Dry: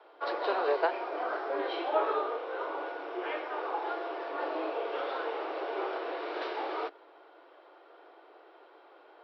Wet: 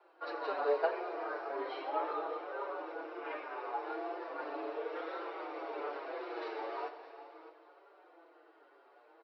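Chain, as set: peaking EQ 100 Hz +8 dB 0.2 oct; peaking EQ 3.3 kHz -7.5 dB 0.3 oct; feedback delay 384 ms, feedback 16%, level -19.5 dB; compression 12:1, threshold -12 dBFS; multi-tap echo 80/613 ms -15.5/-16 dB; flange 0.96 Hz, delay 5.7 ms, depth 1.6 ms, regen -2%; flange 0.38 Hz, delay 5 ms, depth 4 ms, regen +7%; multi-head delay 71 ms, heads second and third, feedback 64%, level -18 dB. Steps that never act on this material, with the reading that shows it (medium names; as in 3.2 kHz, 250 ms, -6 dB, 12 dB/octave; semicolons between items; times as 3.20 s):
peaking EQ 100 Hz: input has nothing below 250 Hz; compression, threshold -12 dBFS: peak at its input -15.0 dBFS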